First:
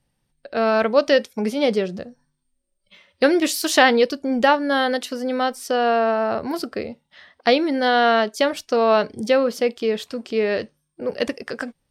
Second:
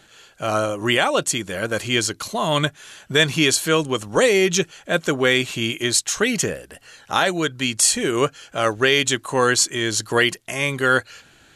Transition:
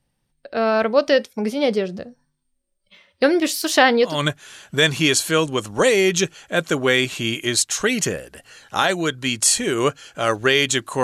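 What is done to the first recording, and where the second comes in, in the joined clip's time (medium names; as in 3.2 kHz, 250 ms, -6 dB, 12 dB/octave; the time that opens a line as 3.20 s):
first
4.13 s: go over to second from 2.50 s, crossfade 0.24 s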